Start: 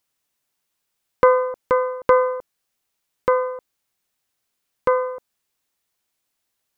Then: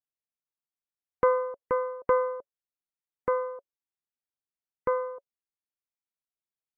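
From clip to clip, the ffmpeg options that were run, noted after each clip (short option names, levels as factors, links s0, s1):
-af "afftdn=nr=14:nf=-41,highshelf=f=2200:g=-10,bandreject=f=560:w=12,volume=0.447"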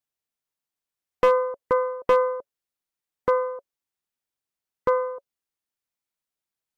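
-af "volume=7.08,asoftclip=hard,volume=0.141,volume=1.88"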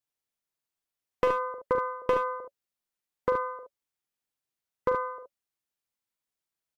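-af "acompressor=threshold=0.1:ratio=3,aecho=1:1:42|65|74:0.355|0.188|0.473,volume=0.75"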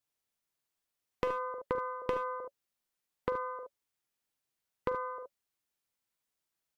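-af "acompressor=threshold=0.0141:ratio=2.5,volume=1.26"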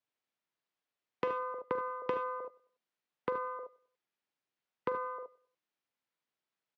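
-filter_complex "[0:a]acrossover=split=520|680[s0][s1][s2];[s1]aeval=exprs='clip(val(0),-1,0.00251)':c=same[s3];[s0][s3][s2]amix=inputs=3:normalize=0,highpass=150,lowpass=3600,aecho=1:1:96|192|288:0.0794|0.0286|0.0103"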